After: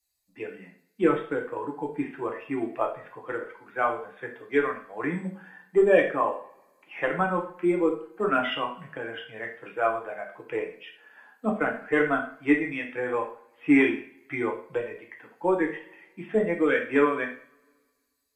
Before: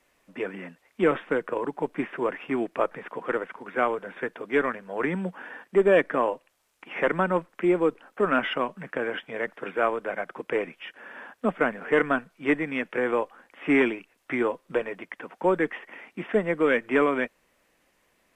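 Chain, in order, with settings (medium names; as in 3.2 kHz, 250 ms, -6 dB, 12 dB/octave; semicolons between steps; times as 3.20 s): expander on every frequency bin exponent 1.5; two-slope reverb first 0.45 s, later 1.7 s, from -27 dB, DRR 0.5 dB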